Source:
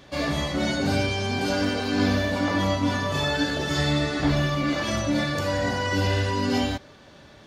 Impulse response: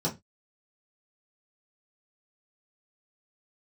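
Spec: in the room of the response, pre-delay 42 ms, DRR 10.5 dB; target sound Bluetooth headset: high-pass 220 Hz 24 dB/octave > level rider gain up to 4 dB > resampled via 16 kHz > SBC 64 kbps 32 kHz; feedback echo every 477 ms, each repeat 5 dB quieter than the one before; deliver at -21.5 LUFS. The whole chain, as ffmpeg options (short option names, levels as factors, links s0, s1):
-filter_complex "[0:a]aecho=1:1:477|954|1431|1908|2385|2862|3339:0.562|0.315|0.176|0.0988|0.0553|0.031|0.0173,asplit=2[s0][s1];[1:a]atrim=start_sample=2205,adelay=42[s2];[s1][s2]afir=irnorm=-1:irlink=0,volume=0.126[s3];[s0][s3]amix=inputs=2:normalize=0,highpass=f=220:w=0.5412,highpass=f=220:w=1.3066,dynaudnorm=m=1.58,aresample=16000,aresample=44100,volume=1.26" -ar 32000 -c:a sbc -b:a 64k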